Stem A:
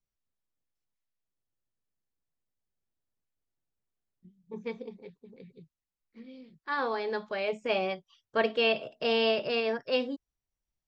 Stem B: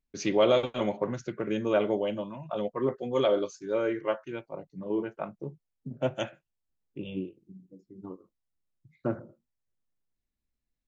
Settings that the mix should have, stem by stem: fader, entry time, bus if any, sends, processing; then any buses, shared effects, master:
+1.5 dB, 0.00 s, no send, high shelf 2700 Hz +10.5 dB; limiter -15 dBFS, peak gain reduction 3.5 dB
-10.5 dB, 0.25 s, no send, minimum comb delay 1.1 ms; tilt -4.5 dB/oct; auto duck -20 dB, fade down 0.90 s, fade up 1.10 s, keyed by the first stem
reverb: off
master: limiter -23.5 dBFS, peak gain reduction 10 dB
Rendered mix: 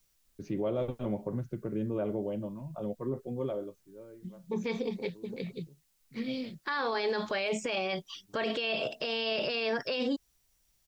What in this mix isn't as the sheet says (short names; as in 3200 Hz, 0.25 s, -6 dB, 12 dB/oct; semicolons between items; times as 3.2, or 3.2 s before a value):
stem A +1.5 dB -> +12.5 dB; stem B: missing minimum comb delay 1.1 ms